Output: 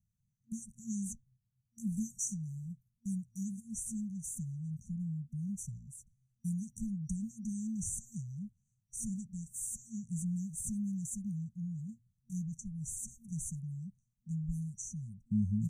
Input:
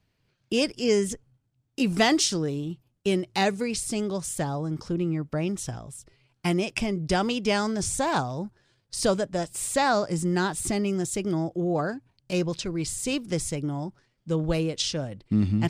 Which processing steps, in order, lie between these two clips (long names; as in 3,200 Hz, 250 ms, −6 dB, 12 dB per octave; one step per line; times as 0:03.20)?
brick-wall band-stop 230–5,800 Hz
level −8 dB